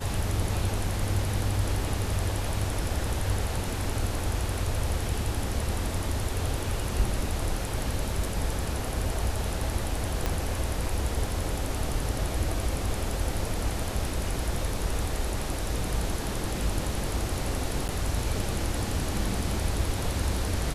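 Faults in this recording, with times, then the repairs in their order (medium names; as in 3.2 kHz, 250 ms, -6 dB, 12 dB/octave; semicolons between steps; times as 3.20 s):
10.26 s: pop -12 dBFS
17.88–17.89 s: dropout 9.6 ms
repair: de-click; interpolate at 17.88 s, 9.6 ms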